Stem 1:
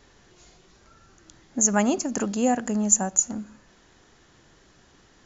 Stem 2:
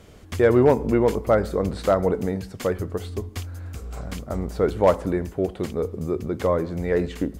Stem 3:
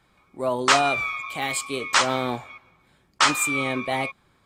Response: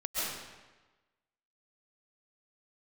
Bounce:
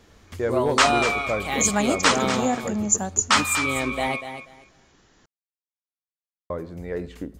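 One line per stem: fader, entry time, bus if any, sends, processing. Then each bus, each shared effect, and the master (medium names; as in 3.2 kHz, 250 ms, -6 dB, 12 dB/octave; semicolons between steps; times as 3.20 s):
-1.5 dB, 0.00 s, no send, no echo send, none
-8.0 dB, 0.00 s, muted 4.08–6.50 s, no send, no echo send, none
0.0 dB, 0.10 s, no send, echo send -10 dB, none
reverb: none
echo: feedback delay 242 ms, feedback 19%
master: none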